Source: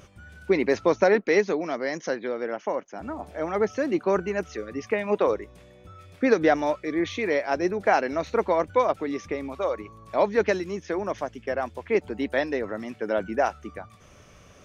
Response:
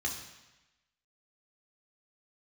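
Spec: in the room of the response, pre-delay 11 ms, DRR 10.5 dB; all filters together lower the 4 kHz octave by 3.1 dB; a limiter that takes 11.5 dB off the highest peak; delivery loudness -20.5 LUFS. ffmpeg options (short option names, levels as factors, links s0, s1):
-filter_complex "[0:a]equalizer=f=4000:t=o:g=-4,alimiter=limit=0.112:level=0:latency=1,asplit=2[s0][s1];[1:a]atrim=start_sample=2205,adelay=11[s2];[s1][s2]afir=irnorm=-1:irlink=0,volume=0.188[s3];[s0][s3]amix=inputs=2:normalize=0,volume=2.99"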